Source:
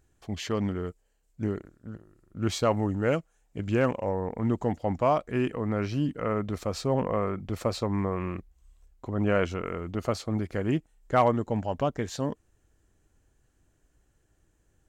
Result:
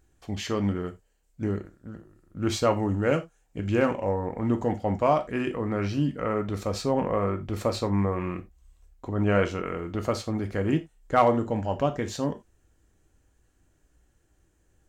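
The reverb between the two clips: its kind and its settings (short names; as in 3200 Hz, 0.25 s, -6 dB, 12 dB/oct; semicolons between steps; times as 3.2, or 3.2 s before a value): non-linear reverb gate 0.11 s falling, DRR 6 dB; gain +1 dB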